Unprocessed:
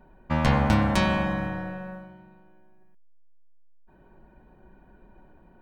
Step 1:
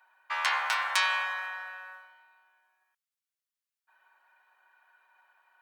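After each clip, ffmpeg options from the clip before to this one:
-af "highpass=f=1100:w=0.5412,highpass=f=1100:w=1.3066,volume=1.41"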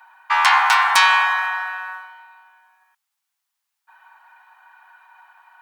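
-af "aeval=exprs='0.376*sin(PI/2*2.51*val(0)/0.376)':c=same,lowshelf=f=630:t=q:w=3:g=-9"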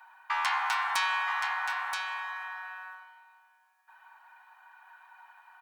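-af "acompressor=threshold=0.0398:ratio=2,aecho=1:1:976:0.501,volume=0.531"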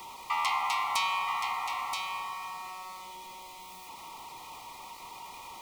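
-af "aeval=exprs='val(0)+0.5*0.01*sgn(val(0))':c=same,asuperstop=centerf=1600:order=12:qfactor=2.6"

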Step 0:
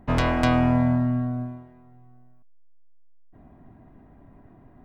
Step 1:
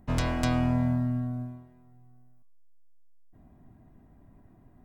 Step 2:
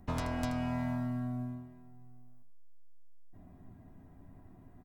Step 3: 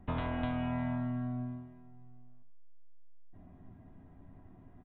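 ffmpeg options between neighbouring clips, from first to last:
-af "bass=f=250:g=5,treble=f=4000:g=12,bandreject=f=139.3:t=h:w=4,bandreject=f=278.6:t=h:w=4,bandreject=f=417.9:t=h:w=4,bandreject=f=557.2:t=h:w=4,bandreject=f=696.5:t=h:w=4,bandreject=f=835.8:t=h:w=4,bandreject=f=975.1:t=h:w=4,bandreject=f=1114.4:t=h:w=4,bandreject=f=1253.7:t=h:w=4,bandreject=f=1393:t=h:w=4,bandreject=f=1532.3:t=h:w=4,bandreject=f=1671.6:t=h:w=4,bandreject=f=1810.9:t=h:w=4,bandreject=f=1950.2:t=h:w=4,bandreject=f=2089.5:t=h:w=4,bandreject=f=2228.8:t=h:w=4,bandreject=f=2368.1:t=h:w=4,bandreject=f=2507.4:t=h:w=4,bandreject=f=2646.7:t=h:w=4,bandreject=f=2786:t=h:w=4,bandreject=f=2925.3:t=h:w=4,bandreject=f=3064.6:t=h:w=4,bandreject=f=3203.9:t=h:w=4,bandreject=f=3343.2:t=h:w=4,bandreject=f=3482.5:t=h:w=4,bandreject=f=3621.8:t=h:w=4,bandreject=f=3761.1:t=h:w=4,bandreject=f=3900.4:t=h:w=4,bandreject=f=4039.7:t=h:w=4,bandreject=f=4179:t=h:w=4,bandreject=f=4318.3:t=h:w=4,bandreject=f=4457.6:t=h:w=4,bandreject=f=4596.9:t=h:w=4,bandreject=f=4736.2:t=h:w=4,bandreject=f=4875.5:t=h:w=4,bandreject=f=5014.8:t=h:w=4,bandreject=f=5154.1:t=h:w=4,volume=0.376"
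-filter_complex "[0:a]acrossover=split=550|1300[s0][s1][s2];[s0]acompressor=threshold=0.0178:ratio=4[s3];[s1]acompressor=threshold=0.00794:ratio=4[s4];[s2]acompressor=threshold=0.00447:ratio=4[s5];[s3][s4][s5]amix=inputs=3:normalize=0,asplit=2[s6][s7];[s7]aecho=0:1:11|80:0.422|0.316[s8];[s6][s8]amix=inputs=2:normalize=0"
-af "aresample=8000,aresample=44100"

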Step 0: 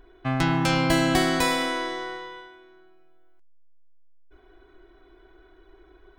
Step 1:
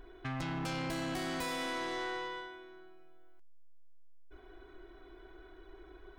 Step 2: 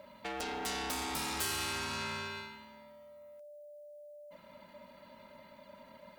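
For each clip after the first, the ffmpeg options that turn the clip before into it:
-af "acompressor=threshold=0.0355:ratio=10,asoftclip=type=tanh:threshold=0.0224"
-af "aeval=exprs='val(0)*sin(2*PI*590*n/s)':c=same,crystalizer=i=3.5:c=0"

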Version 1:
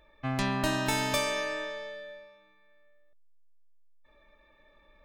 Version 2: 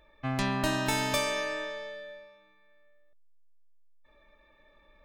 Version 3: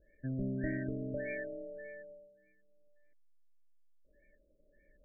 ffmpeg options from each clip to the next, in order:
-af anull
-af "acrusher=bits=3:mode=log:mix=0:aa=0.000001,asuperstop=centerf=1000:order=12:qfactor=0.92,afftfilt=real='re*lt(b*sr/1024,970*pow(2400/970,0.5+0.5*sin(2*PI*1.7*pts/sr)))':imag='im*lt(b*sr/1024,970*pow(2400/970,0.5+0.5*sin(2*PI*1.7*pts/sr)))':win_size=1024:overlap=0.75,volume=0.596"

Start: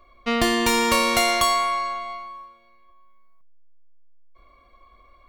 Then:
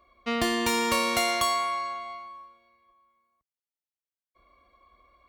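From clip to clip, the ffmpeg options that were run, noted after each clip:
-af "highpass=52,volume=0.531"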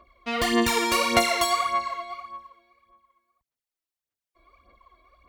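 -af "aphaser=in_gain=1:out_gain=1:delay=3.1:decay=0.65:speed=1.7:type=sinusoidal"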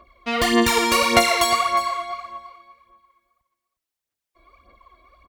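-af "aecho=1:1:358:0.188,volume=1.68"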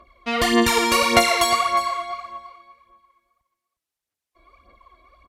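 -ar 32000 -c:a libvorbis -b:a 128k

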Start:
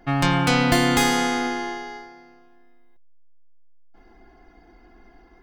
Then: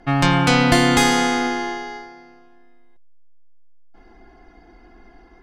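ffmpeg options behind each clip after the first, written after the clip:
-af "lowpass=11000,volume=1.5"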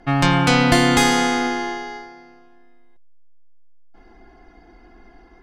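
-af anull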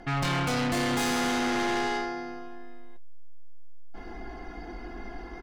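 -filter_complex "[0:a]asplit=2[s0][s1];[s1]adelay=20,volume=0.282[s2];[s0][s2]amix=inputs=2:normalize=0,areverse,acompressor=threshold=0.0631:ratio=8,areverse,asoftclip=type=tanh:threshold=0.0224,volume=2.51"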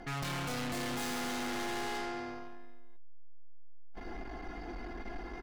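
-af "aeval=exprs='(tanh(63.1*val(0)+0.25)-tanh(0.25))/63.1':c=same"

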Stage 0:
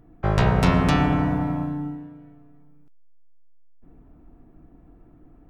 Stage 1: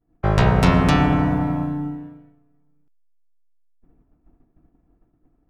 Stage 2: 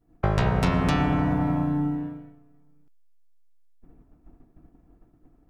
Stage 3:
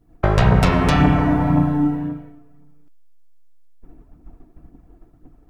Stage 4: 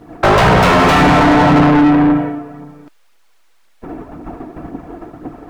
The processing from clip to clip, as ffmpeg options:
-af "agate=range=0.0224:threshold=0.0112:ratio=3:detection=peak,volume=1.41"
-af "acompressor=threshold=0.0447:ratio=3,volume=1.68"
-af "aphaser=in_gain=1:out_gain=1:delay=3.4:decay=0.38:speed=1.9:type=triangular,volume=2.11"
-filter_complex "[0:a]asplit=2[s0][s1];[s1]highpass=f=720:p=1,volume=70.8,asoftclip=type=tanh:threshold=0.794[s2];[s0][s2]amix=inputs=2:normalize=0,lowpass=f=1600:p=1,volume=0.501"

